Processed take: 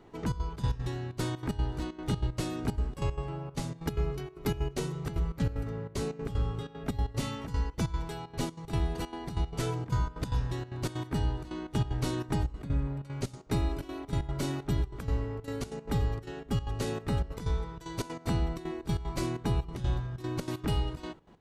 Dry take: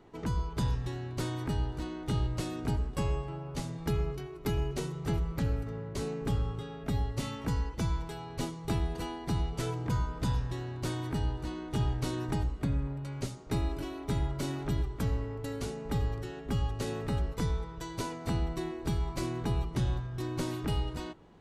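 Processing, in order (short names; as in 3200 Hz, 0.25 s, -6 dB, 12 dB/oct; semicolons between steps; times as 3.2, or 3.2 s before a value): step gate "xxxx.xx.x." 189 bpm -12 dB; gain +2 dB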